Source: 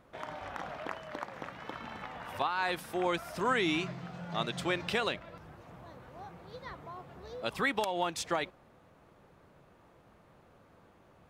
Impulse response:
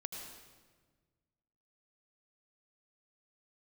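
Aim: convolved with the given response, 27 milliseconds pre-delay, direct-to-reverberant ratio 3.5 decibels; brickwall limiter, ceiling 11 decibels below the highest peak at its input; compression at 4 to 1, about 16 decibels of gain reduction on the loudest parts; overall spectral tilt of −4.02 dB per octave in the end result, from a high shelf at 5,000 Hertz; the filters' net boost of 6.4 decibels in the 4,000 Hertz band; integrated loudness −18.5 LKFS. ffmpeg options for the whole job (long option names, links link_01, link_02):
-filter_complex "[0:a]equalizer=frequency=4000:width_type=o:gain=6,highshelf=frequency=5000:gain=4.5,acompressor=threshold=-45dB:ratio=4,alimiter=level_in=14dB:limit=-24dB:level=0:latency=1,volume=-14dB,asplit=2[link_01][link_02];[1:a]atrim=start_sample=2205,adelay=27[link_03];[link_02][link_03]afir=irnorm=-1:irlink=0,volume=-2dB[link_04];[link_01][link_04]amix=inputs=2:normalize=0,volume=29dB"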